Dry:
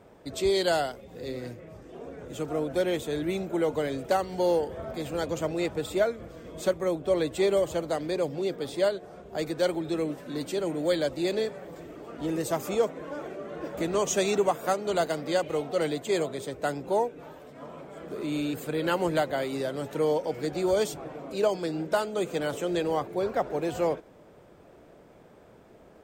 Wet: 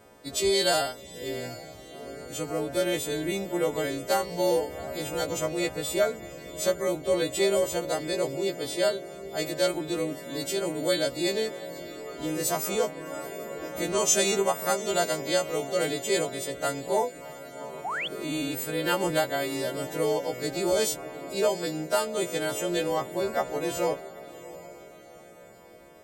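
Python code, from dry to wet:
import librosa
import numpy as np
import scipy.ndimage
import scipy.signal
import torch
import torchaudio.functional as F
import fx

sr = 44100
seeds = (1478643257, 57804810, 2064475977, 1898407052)

y = fx.freq_snap(x, sr, grid_st=2)
y = fx.echo_diffused(y, sr, ms=758, feedback_pct=42, wet_db=-16)
y = fx.spec_paint(y, sr, seeds[0], shape='rise', start_s=17.84, length_s=0.24, low_hz=650.0, high_hz=3600.0, level_db=-31.0)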